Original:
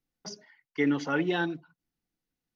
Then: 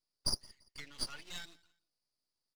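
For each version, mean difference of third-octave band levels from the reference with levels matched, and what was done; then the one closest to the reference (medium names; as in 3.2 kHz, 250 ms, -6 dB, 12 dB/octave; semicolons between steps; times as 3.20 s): 12.5 dB: compression, threshold -27 dBFS, peak gain reduction 6.5 dB; band-pass filter 4.8 kHz, Q 8.7; half-wave rectifier; on a send: feedback delay 170 ms, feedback 29%, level -24 dB; on the sum: trim +17.5 dB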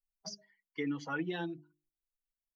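3.5 dB: expander on every frequency bin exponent 1.5; hum notches 50/100/150/200/250/300/350/400 Hz; comb 6.2 ms, depth 54%; compression 2:1, threshold -40 dBFS, peak gain reduction 10 dB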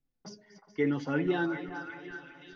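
4.5 dB: backward echo that repeats 211 ms, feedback 68%, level -13 dB; tilt EQ -2 dB/octave; flange 0.85 Hz, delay 7.3 ms, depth 2.8 ms, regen +44%; on a send: repeats whose band climbs or falls 371 ms, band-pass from 1.1 kHz, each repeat 0.7 oct, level -4.5 dB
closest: second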